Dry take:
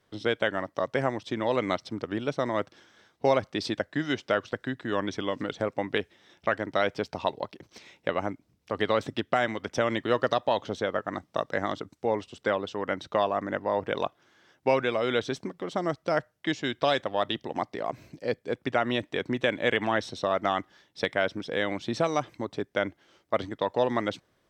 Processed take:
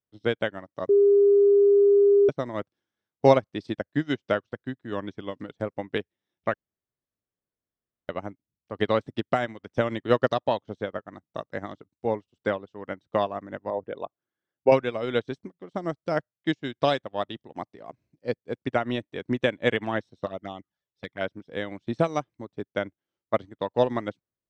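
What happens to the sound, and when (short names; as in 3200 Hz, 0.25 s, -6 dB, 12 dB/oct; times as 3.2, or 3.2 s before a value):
0.89–2.29 bleep 403 Hz -19.5 dBFS
6.54–8.09 room tone
13.7–14.72 formant sharpening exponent 1.5
20.26–21.21 envelope flanger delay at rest 2.7 ms, full sweep at -21.5 dBFS
whole clip: low shelf 370 Hz +8 dB; upward expander 2.5:1, over -40 dBFS; gain +4.5 dB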